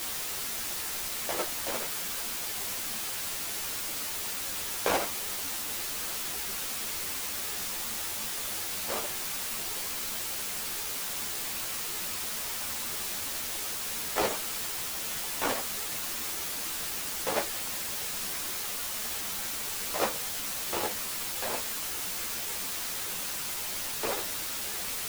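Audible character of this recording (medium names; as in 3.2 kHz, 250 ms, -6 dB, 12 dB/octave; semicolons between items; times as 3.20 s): tremolo saw down 7.2 Hz, depth 75%; a quantiser's noise floor 6-bit, dither triangular; a shimmering, thickened sound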